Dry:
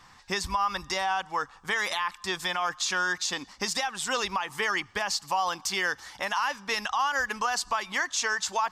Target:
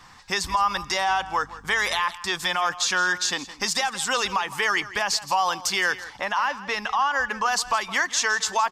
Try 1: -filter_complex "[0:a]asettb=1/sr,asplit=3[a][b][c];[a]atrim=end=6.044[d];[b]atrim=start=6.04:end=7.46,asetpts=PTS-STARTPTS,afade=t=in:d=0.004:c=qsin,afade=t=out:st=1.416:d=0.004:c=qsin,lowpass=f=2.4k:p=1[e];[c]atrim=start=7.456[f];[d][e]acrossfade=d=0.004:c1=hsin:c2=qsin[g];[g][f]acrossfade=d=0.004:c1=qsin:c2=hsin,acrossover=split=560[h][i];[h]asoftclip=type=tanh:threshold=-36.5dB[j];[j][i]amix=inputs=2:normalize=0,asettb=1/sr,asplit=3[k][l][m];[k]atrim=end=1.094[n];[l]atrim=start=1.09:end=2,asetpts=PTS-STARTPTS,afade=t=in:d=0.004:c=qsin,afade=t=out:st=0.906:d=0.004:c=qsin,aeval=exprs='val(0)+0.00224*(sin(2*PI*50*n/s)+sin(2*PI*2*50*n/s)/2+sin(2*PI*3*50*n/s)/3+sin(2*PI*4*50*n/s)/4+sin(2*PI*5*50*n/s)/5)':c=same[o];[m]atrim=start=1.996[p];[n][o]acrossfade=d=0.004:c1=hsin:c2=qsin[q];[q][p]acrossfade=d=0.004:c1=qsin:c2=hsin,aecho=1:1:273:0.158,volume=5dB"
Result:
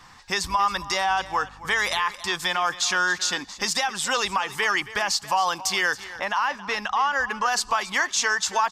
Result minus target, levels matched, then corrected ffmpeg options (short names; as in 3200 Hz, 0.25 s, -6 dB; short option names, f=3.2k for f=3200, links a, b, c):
echo 0.108 s late
-filter_complex "[0:a]asettb=1/sr,asplit=3[a][b][c];[a]atrim=end=6.044[d];[b]atrim=start=6.04:end=7.46,asetpts=PTS-STARTPTS,afade=t=in:d=0.004:c=qsin,afade=t=out:st=1.416:d=0.004:c=qsin,lowpass=f=2.4k:p=1[e];[c]atrim=start=7.456[f];[d][e]acrossfade=d=0.004:c1=hsin:c2=qsin[g];[g][f]acrossfade=d=0.004:c1=qsin:c2=hsin,acrossover=split=560[h][i];[h]asoftclip=type=tanh:threshold=-36.5dB[j];[j][i]amix=inputs=2:normalize=0,asettb=1/sr,asplit=3[k][l][m];[k]atrim=end=1.094[n];[l]atrim=start=1.09:end=2,asetpts=PTS-STARTPTS,afade=t=in:d=0.004:c=qsin,afade=t=out:st=0.906:d=0.004:c=qsin,aeval=exprs='val(0)+0.00224*(sin(2*PI*50*n/s)+sin(2*PI*2*50*n/s)/2+sin(2*PI*3*50*n/s)/3+sin(2*PI*4*50*n/s)/4+sin(2*PI*5*50*n/s)/5)':c=same[o];[m]atrim=start=1.996[p];[n][o]acrossfade=d=0.004:c1=hsin:c2=qsin[q];[q][p]acrossfade=d=0.004:c1=qsin:c2=hsin,aecho=1:1:165:0.158,volume=5dB"